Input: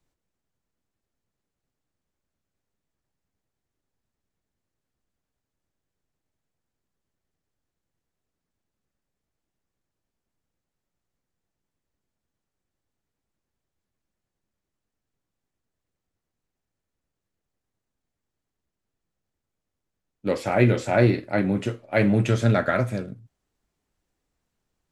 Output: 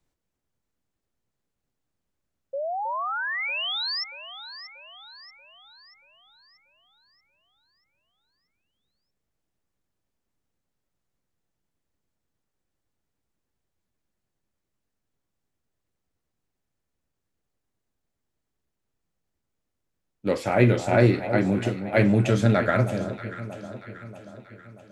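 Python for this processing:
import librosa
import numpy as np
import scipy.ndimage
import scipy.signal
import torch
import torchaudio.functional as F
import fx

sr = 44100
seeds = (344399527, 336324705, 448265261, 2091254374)

y = fx.spec_paint(x, sr, seeds[0], shape='rise', start_s=2.53, length_s=1.51, low_hz=530.0, high_hz=5500.0, level_db=-29.0)
y = fx.echo_alternate(y, sr, ms=317, hz=1100.0, feedback_pct=71, wet_db=-10)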